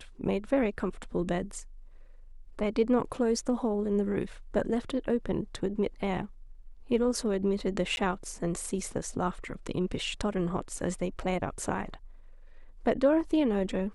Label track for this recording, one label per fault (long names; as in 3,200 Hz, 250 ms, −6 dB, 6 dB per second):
7.960000	7.970000	drop-out